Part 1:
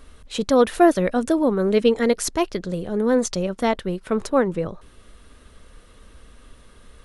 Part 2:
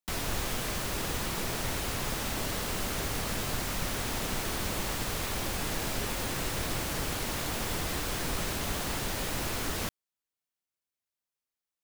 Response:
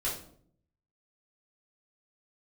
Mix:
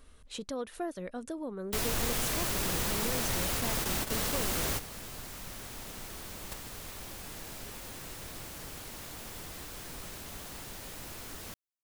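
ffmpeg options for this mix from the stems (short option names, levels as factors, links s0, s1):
-filter_complex "[0:a]acompressor=threshold=0.0282:ratio=2,volume=0.299,asplit=2[s0][s1];[1:a]adelay=1650,volume=1.06[s2];[s1]apad=whole_len=594468[s3];[s2][s3]sidechaingate=range=0.224:threshold=0.00355:ratio=16:detection=peak[s4];[s0][s4]amix=inputs=2:normalize=0,highshelf=f=6100:g=5.5,asoftclip=type=tanh:threshold=0.0841"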